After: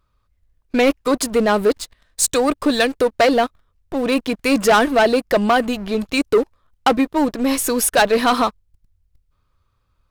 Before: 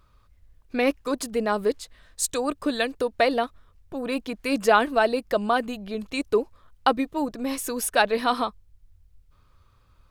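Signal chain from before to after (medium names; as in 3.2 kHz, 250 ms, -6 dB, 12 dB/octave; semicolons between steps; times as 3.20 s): waveshaping leveller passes 3; trim -1 dB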